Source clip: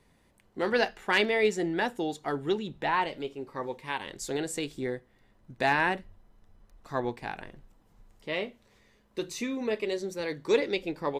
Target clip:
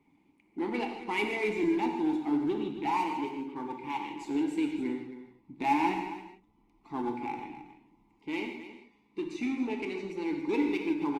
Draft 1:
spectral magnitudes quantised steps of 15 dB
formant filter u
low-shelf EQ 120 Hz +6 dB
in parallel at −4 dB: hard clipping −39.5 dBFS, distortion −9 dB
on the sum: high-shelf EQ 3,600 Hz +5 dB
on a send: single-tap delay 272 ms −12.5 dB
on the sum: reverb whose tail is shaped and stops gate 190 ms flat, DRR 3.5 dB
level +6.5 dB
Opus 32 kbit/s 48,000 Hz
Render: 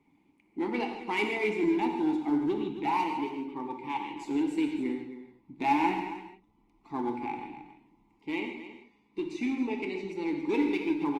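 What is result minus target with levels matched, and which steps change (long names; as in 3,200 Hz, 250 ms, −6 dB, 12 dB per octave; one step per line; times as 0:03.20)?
hard clipping: distortion −4 dB
change: hard clipping −45.5 dBFS, distortion −5 dB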